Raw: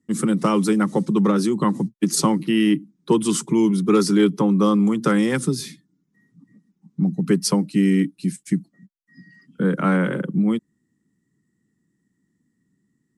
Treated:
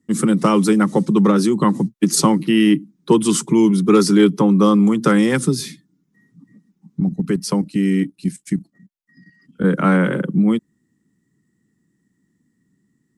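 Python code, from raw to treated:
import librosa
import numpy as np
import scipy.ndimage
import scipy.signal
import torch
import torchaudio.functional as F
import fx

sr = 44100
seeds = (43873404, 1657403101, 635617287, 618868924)

y = fx.level_steps(x, sr, step_db=10, at=(7.0, 9.64))
y = y * librosa.db_to_amplitude(4.0)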